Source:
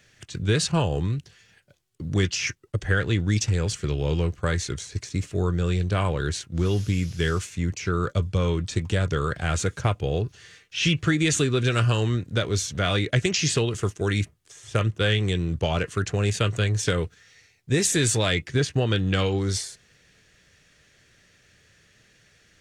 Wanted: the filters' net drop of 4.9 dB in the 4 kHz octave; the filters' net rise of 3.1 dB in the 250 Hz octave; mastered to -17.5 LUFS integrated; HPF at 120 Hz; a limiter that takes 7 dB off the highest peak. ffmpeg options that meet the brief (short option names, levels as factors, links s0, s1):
-af "highpass=120,equalizer=f=250:t=o:g=5.5,equalizer=f=4000:t=o:g=-6.5,volume=2.82,alimiter=limit=0.531:level=0:latency=1"